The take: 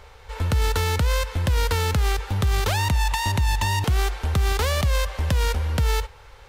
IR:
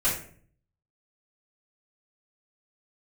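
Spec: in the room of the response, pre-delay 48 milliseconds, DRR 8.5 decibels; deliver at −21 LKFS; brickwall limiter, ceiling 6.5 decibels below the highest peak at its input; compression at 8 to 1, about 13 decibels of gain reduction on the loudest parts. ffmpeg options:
-filter_complex "[0:a]acompressor=threshold=-31dB:ratio=8,alimiter=level_in=5dB:limit=-24dB:level=0:latency=1,volume=-5dB,asplit=2[link_01][link_02];[1:a]atrim=start_sample=2205,adelay=48[link_03];[link_02][link_03]afir=irnorm=-1:irlink=0,volume=-19.5dB[link_04];[link_01][link_04]amix=inputs=2:normalize=0,volume=15dB"

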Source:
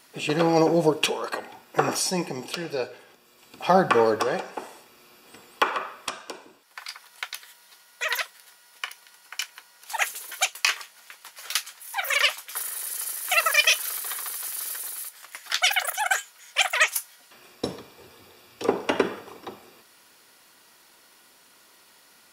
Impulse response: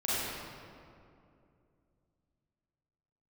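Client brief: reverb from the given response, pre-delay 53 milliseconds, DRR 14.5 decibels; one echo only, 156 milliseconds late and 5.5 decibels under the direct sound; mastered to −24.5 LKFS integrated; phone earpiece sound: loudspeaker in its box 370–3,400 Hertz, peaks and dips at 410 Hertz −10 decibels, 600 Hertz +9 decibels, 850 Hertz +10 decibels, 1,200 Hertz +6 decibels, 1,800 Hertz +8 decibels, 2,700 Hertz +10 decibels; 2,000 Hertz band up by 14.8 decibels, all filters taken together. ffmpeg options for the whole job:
-filter_complex "[0:a]equalizer=frequency=2000:width_type=o:gain=9,aecho=1:1:156:0.531,asplit=2[link_01][link_02];[1:a]atrim=start_sample=2205,adelay=53[link_03];[link_02][link_03]afir=irnorm=-1:irlink=0,volume=-23.5dB[link_04];[link_01][link_04]amix=inputs=2:normalize=0,highpass=370,equalizer=frequency=410:width_type=q:width=4:gain=-10,equalizer=frequency=600:width_type=q:width=4:gain=9,equalizer=frequency=850:width_type=q:width=4:gain=10,equalizer=frequency=1200:width_type=q:width=4:gain=6,equalizer=frequency=1800:width_type=q:width=4:gain=8,equalizer=frequency=2700:width_type=q:width=4:gain=10,lowpass=frequency=3400:width=0.5412,lowpass=frequency=3400:width=1.3066,volume=-11.5dB"

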